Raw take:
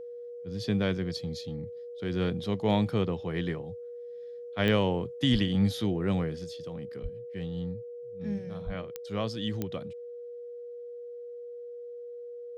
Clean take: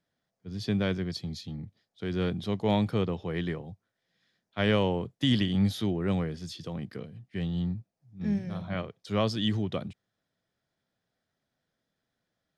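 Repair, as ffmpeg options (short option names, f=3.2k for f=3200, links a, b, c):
-filter_complex "[0:a]adeclick=t=4,bandreject=f=480:w=30,asplit=3[a][b][c];[a]afade=t=out:st=5.32:d=0.02[d];[b]highpass=f=140:w=0.5412,highpass=f=140:w=1.3066,afade=t=in:st=5.32:d=0.02,afade=t=out:st=5.44:d=0.02[e];[c]afade=t=in:st=5.44:d=0.02[f];[d][e][f]amix=inputs=3:normalize=0,asplit=3[g][h][i];[g]afade=t=out:st=7.02:d=0.02[j];[h]highpass=f=140:w=0.5412,highpass=f=140:w=1.3066,afade=t=in:st=7.02:d=0.02,afade=t=out:st=7.14:d=0.02[k];[i]afade=t=in:st=7.14:d=0.02[l];[j][k][l]amix=inputs=3:normalize=0,asplit=3[m][n][o];[m]afade=t=out:st=8.65:d=0.02[p];[n]highpass=f=140:w=0.5412,highpass=f=140:w=1.3066,afade=t=in:st=8.65:d=0.02,afade=t=out:st=8.77:d=0.02[q];[o]afade=t=in:st=8.77:d=0.02[r];[p][q][r]amix=inputs=3:normalize=0,asetnsamples=n=441:p=0,asendcmd='6.44 volume volume 5dB',volume=0dB"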